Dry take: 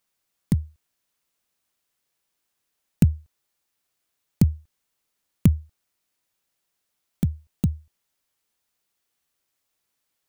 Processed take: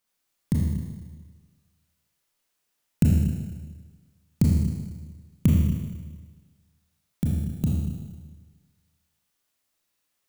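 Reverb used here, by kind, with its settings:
four-comb reverb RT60 1.4 s, combs from 26 ms, DRR −3 dB
level −3.5 dB

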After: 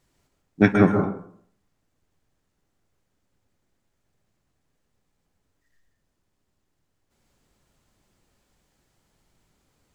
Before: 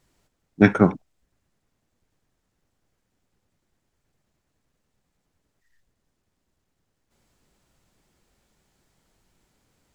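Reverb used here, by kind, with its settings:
dense smooth reverb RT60 0.59 s, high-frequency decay 0.5×, pre-delay 115 ms, DRR 4 dB
level −2 dB

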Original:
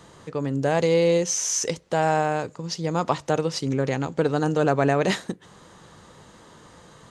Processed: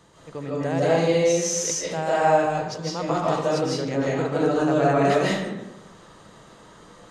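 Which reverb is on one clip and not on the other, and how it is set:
comb and all-pass reverb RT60 0.98 s, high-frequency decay 0.6×, pre-delay 115 ms, DRR −7 dB
level −6.5 dB

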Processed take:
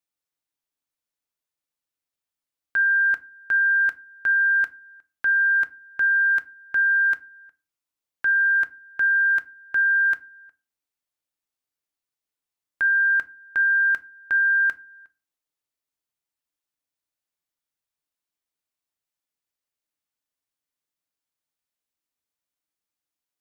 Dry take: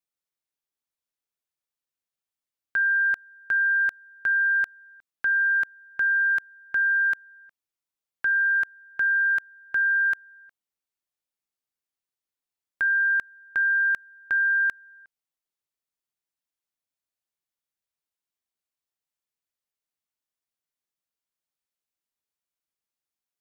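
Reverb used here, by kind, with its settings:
feedback delay network reverb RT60 0.3 s, low-frequency decay 1.6×, high-frequency decay 0.7×, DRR 11 dB
level +1 dB

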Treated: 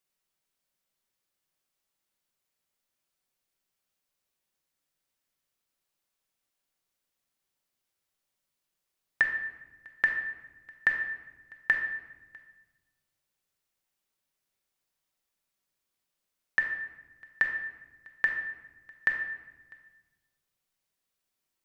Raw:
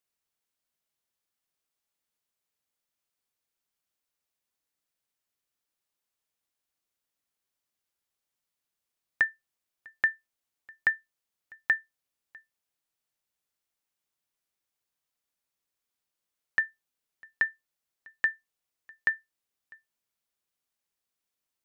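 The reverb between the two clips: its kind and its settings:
rectangular room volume 690 cubic metres, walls mixed, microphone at 1.1 metres
level +1 dB

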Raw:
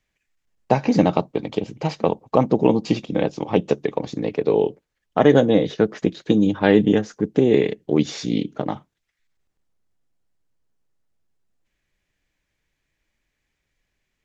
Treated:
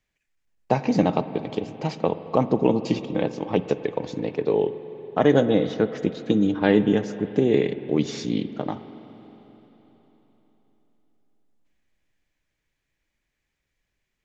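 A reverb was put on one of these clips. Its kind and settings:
spring reverb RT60 4 s, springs 44/54 ms, chirp 45 ms, DRR 12 dB
level −3.5 dB

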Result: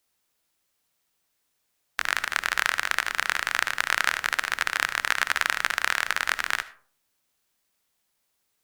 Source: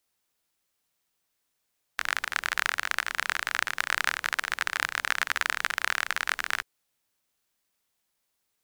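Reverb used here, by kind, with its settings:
comb and all-pass reverb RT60 0.47 s, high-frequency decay 0.45×, pre-delay 35 ms, DRR 15.5 dB
level +3 dB

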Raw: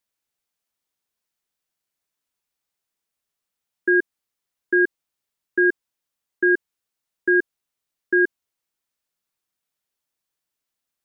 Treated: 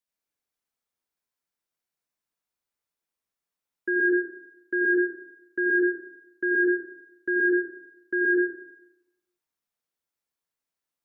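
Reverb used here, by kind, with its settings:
dense smooth reverb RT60 0.91 s, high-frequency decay 0.3×, pre-delay 75 ms, DRR −3 dB
level −8.5 dB

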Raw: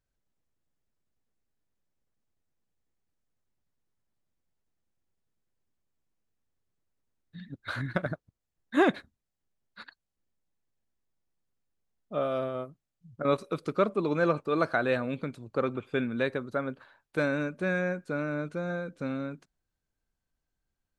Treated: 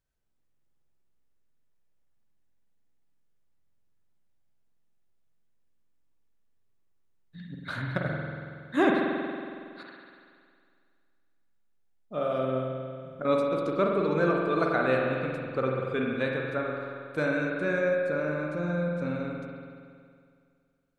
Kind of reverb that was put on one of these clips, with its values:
spring reverb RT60 2.2 s, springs 46 ms, chirp 25 ms, DRR −1 dB
level −1.5 dB

